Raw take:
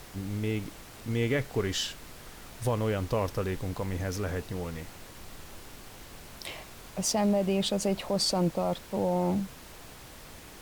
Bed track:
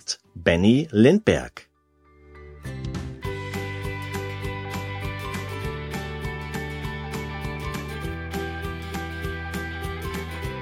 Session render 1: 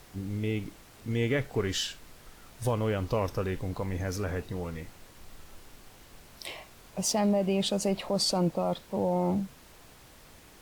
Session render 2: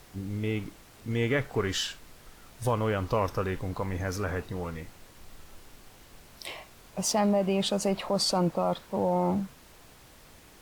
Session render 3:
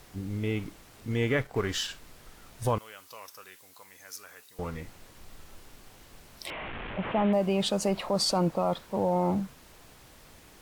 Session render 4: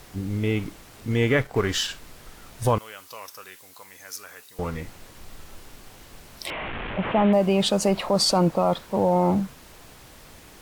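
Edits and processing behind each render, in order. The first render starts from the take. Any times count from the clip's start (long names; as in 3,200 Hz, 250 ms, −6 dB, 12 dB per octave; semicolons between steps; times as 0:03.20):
noise reduction from a noise print 6 dB
dynamic equaliser 1,200 Hz, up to +6 dB, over −47 dBFS, Q 1.1
0:01.41–0:01.89: mu-law and A-law mismatch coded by A; 0:02.78–0:04.59: first difference; 0:06.50–0:07.33: linear delta modulator 16 kbit/s, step −31.5 dBFS
level +6 dB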